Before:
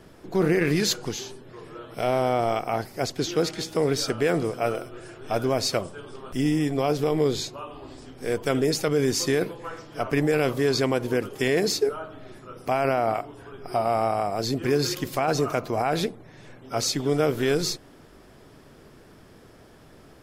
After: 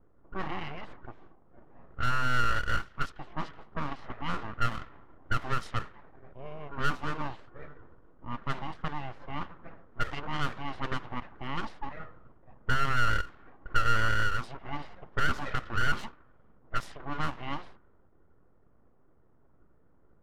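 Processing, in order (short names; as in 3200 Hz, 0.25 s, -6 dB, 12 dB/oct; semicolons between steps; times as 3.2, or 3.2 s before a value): vowel filter a; full-wave rectifier; low-pass opened by the level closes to 560 Hz, open at -29 dBFS; gain +6 dB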